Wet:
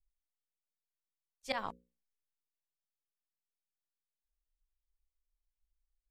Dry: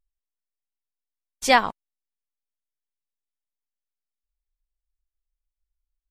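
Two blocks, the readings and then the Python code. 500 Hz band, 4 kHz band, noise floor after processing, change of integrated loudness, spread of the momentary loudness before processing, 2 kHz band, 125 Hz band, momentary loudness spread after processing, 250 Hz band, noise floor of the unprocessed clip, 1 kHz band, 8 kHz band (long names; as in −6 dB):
−17.5 dB, −17.5 dB, below −85 dBFS, −19.0 dB, 13 LU, −20.0 dB, −12.0 dB, 16 LU, −18.0 dB, below −85 dBFS, −20.0 dB, −24.5 dB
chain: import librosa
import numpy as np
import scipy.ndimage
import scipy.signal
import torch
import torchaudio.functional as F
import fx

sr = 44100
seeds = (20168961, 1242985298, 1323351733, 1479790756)

y = fx.auto_swell(x, sr, attack_ms=512.0)
y = fx.hum_notches(y, sr, base_hz=60, count=9)
y = fx.band_widen(y, sr, depth_pct=40)
y = y * librosa.db_to_amplitude(-1.5)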